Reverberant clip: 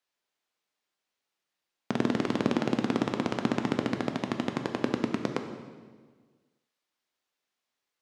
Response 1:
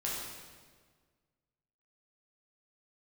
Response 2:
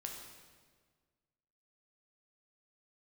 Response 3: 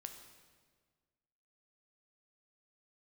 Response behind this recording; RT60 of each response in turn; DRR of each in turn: 3; 1.6 s, 1.6 s, 1.6 s; -6.0 dB, 0.5 dB, 5.0 dB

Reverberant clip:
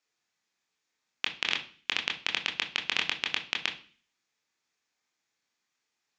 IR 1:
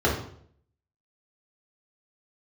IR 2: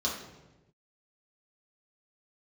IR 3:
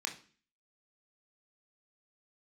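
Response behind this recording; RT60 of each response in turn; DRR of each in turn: 3; 0.60 s, 1.1 s, 0.40 s; -5.5 dB, -5.5 dB, 1.0 dB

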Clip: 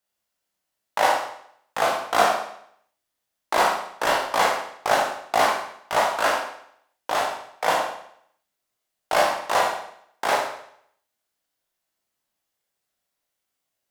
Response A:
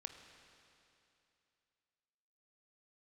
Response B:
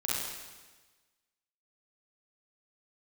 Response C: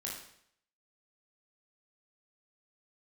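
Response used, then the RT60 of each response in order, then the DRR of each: C; 2.8 s, 1.3 s, 0.65 s; 5.5 dB, -6.5 dB, -3.5 dB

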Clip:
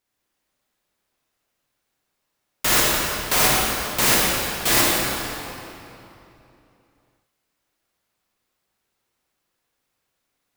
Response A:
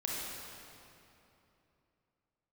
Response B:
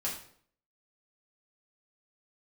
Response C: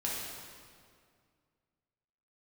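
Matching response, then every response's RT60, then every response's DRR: A; 3.0 s, 0.60 s, 2.1 s; -4.5 dB, -6.0 dB, -5.5 dB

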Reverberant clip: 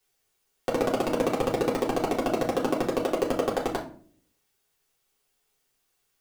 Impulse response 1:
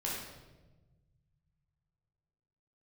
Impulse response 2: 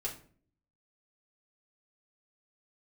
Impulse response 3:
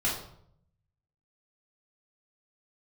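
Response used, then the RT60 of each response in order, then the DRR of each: 2; 1.2 s, 0.45 s, 0.65 s; -5.5 dB, -5.0 dB, -5.5 dB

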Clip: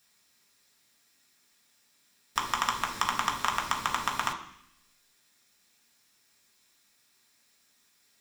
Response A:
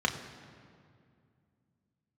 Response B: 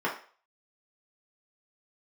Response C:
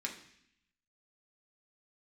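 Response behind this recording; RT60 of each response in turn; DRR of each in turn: C; 2.3 s, 0.45 s, 0.70 s; 2.0 dB, -4.5 dB, -1.0 dB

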